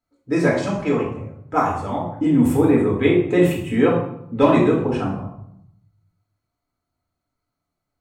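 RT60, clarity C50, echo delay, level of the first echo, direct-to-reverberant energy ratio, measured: 0.75 s, 4.5 dB, none, none, -3.5 dB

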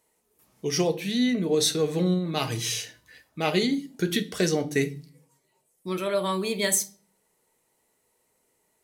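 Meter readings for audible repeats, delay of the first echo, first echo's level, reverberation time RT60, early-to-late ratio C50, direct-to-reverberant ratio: none, none, none, 0.45 s, 17.5 dB, 9.0 dB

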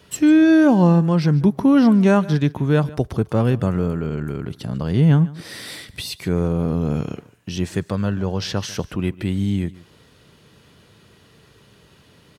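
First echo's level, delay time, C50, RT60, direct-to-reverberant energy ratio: -20.0 dB, 0.147 s, none, none, none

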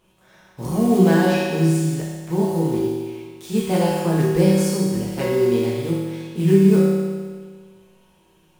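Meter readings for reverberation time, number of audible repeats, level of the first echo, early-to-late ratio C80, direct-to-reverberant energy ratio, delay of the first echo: 1.6 s, none, none, 0.5 dB, -7.0 dB, none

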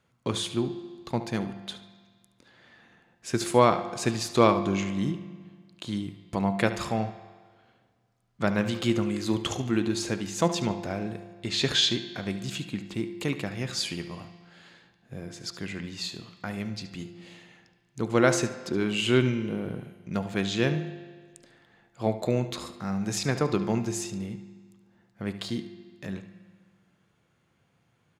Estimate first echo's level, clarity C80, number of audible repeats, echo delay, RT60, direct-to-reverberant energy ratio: -13.5 dB, 13.0 dB, 1, 72 ms, 1.6 s, 8.5 dB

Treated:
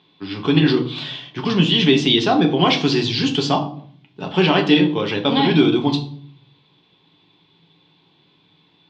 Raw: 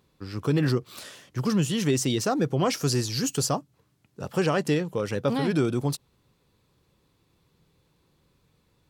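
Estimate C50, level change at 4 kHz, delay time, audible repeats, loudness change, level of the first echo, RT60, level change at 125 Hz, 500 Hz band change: 11.5 dB, +15.0 dB, none, none, +9.0 dB, none, 0.55 s, +5.0 dB, +7.0 dB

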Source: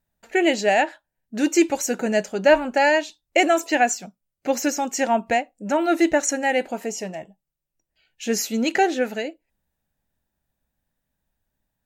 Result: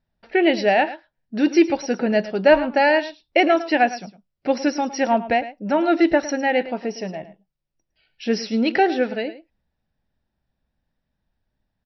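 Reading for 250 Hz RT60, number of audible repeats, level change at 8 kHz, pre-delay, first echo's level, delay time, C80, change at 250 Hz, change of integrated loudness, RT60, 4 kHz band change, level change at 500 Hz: none, 1, -12.0 dB, none, -15.0 dB, 0.108 s, none, +2.5 dB, +1.5 dB, none, 0.0 dB, +1.5 dB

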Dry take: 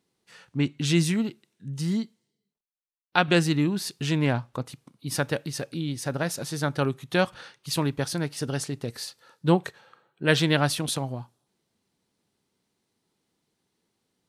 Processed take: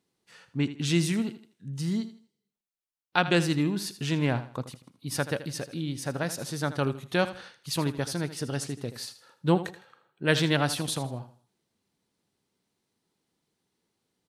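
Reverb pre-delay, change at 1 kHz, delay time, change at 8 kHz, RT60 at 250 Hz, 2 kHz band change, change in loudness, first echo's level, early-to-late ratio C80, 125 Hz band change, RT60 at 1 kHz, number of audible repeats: none, -2.5 dB, 80 ms, -2.5 dB, none, -2.5 dB, -2.5 dB, -13.5 dB, none, -2.5 dB, none, 3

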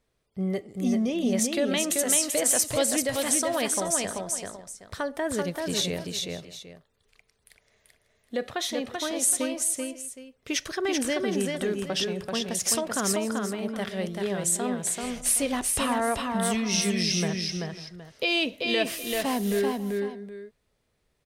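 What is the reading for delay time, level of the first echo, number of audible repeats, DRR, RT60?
0.386 s, -3.5 dB, 3, none, none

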